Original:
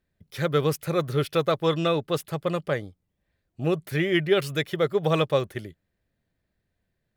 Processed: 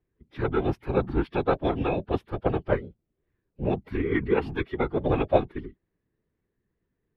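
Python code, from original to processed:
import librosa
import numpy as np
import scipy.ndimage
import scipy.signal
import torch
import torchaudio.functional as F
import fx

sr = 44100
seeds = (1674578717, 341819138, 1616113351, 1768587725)

y = fx.small_body(x, sr, hz=(230.0, 560.0), ring_ms=70, db=8)
y = fx.whisperise(y, sr, seeds[0])
y = fx.pitch_keep_formants(y, sr, semitones=-7.5)
y = fx.air_absorb(y, sr, metres=400.0)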